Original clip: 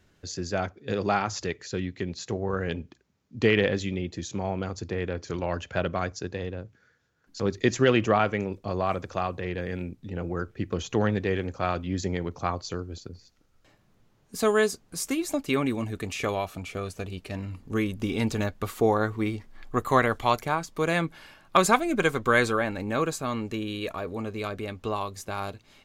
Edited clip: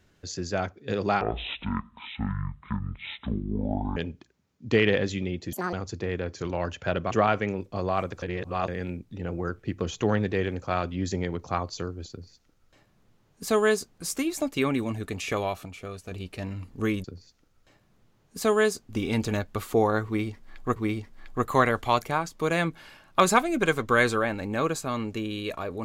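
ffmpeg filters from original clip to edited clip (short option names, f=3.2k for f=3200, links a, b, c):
-filter_complex "[0:a]asplit=13[a][b][c][d][e][f][g][h][i][j][k][l][m];[a]atrim=end=1.214[n];[b]atrim=start=1.21:end=2.67,asetpts=PTS-STARTPTS,asetrate=23373,aresample=44100,atrim=end_sample=121483,asetpts=PTS-STARTPTS[o];[c]atrim=start=2.666:end=4.234[p];[d]atrim=start=4.23:end=4.62,asetpts=PTS-STARTPTS,asetrate=83349,aresample=44100[q];[e]atrim=start=4.616:end=6.002[r];[f]atrim=start=8.028:end=9.142[s];[g]atrim=start=9.138:end=9.602,asetpts=PTS-STARTPTS,areverse[t];[h]atrim=start=9.598:end=16.572[u];[i]atrim=start=16.568:end=17.032,asetpts=PTS-STARTPTS,volume=-5dB[v];[j]atrim=start=17.028:end=17.962[w];[k]atrim=start=13.018:end=14.872[x];[l]atrim=start=17.958:end=19.832[y];[m]atrim=start=19.128[z];[n][o]acrossfade=d=0.004:c1=hsin:c2=hsin[aa];[aa][p]acrossfade=d=0.004:c1=hsin:c2=hsin[ab];[ab][q]acrossfade=d=0.004:c1=hsin:c2=hsin[ac];[ac][r]acrossfade=d=0.004:c1=hsin:c2=hsin[ad];[ad][s]acrossfade=d=0.004:c1=hsin:c2=hsin[ae];[ae][t]acrossfade=d=0.004:c1=hsin:c2=hsin[af];[af][u]acrossfade=d=0.004:c1=hsin:c2=hsin[ag];[ag][v]acrossfade=d=0.004:c1=hsin:c2=hsin[ah];[ah][w]acrossfade=d=0.004:c1=hsin:c2=hsin[ai];[ai][x]acrossfade=d=0.004:c1=hsin:c2=hsin[aj];[aj][y]acrossfade=d=0.004:c1=hsin:c2=hsin[ak];[ak][z]acrossfade=d=0.004:c1=hsin:c2=hsin"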